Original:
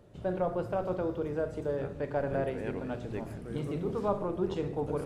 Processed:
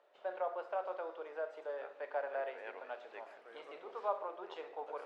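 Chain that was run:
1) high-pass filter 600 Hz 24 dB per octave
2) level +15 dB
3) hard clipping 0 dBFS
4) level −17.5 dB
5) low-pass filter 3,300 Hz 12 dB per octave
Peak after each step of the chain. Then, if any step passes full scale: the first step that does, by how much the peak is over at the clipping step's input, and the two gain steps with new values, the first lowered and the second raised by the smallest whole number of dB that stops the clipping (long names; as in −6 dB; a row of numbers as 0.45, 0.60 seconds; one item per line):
−19.5, −4.5, −4.5, −22.0, −22.0 dBFS
no step passes full scale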